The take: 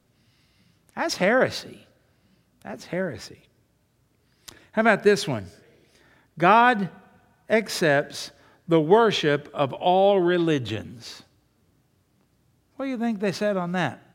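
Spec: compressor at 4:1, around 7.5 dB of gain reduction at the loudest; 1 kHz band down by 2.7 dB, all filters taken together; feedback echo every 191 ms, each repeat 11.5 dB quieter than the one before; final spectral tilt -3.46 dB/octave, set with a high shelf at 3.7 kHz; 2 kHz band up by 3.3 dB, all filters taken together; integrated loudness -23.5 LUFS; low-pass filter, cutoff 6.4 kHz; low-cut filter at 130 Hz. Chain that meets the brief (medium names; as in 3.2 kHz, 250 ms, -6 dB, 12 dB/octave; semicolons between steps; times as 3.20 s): high-pass 130 Hz; low-pass 6.4 kHz; peaking EQ 1 kHz -5.5 dB; peaking EQ 2 kHz +7.5 dB; treble shelf 3.7 kHz -4 dB; compression 4:1, threshold -21 dBFS; feedback delay 191 ms, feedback 27%, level -11.5 dB; trim +4 dB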